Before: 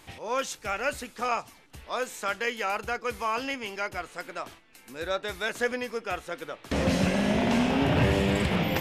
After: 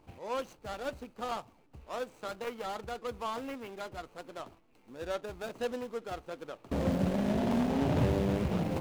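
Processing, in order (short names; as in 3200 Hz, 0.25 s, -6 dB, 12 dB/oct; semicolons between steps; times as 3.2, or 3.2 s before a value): median filter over 25 samples; gain -4 dB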